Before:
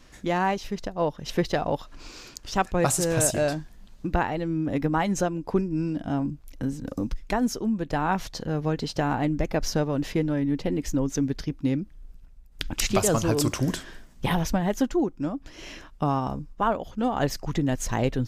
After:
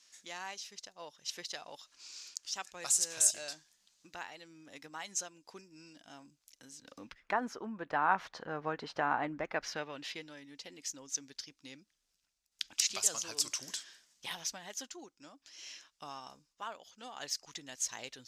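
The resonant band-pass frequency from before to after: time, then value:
resonant band-pass, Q 1.3
0:06.70 6,400 Hz
0:07.31 1,300 Hz
0:09.41 1,300 Hz
0:10.40 5,800 Hz

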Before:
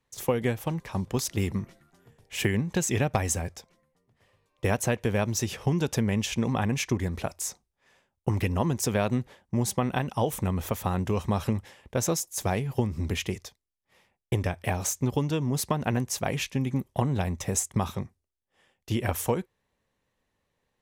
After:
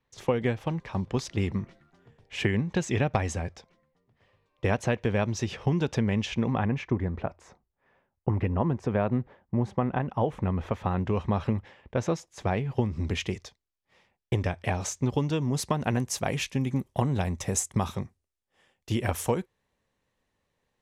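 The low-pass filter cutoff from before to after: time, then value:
0:06.21 4,200 Hz
0:06.89 1,600 Hz
0:09.95 1,600 Hz
0:11.02 2,900 Hz
0:12.50 2,900 Hz
0:13.18 6,000 Hz
0:15.13 6,000 Hz
0:15.95 11,000 Hz

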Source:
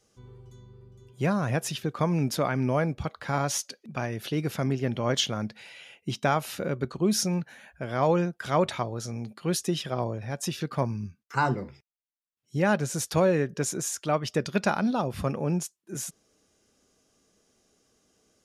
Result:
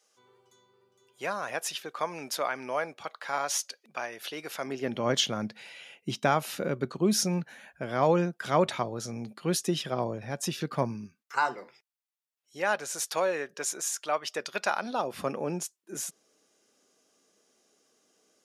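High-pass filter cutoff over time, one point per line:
0:04.57 640 Hz
0:05.07 150 Hz
0:10.87 150 Hz
0:11.40 640 Hz
0:14.72 640 Hz
0:15.22 290 Hz

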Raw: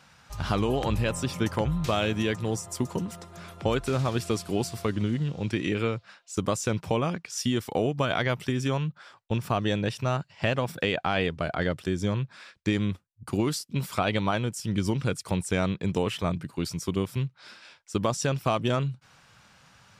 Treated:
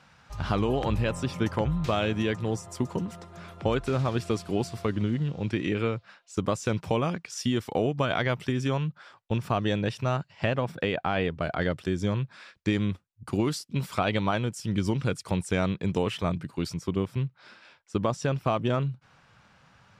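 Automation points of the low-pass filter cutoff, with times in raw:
low-pass filter 6 dB per octave
3,500 Hz
from 0:06.66 8,900 Hz
from 0:07.34 4,900 Hz
from 0:10.46 2,200 Hz
from 0:11.42 5,800 Hz
from 0:16.74 2,200 Hz

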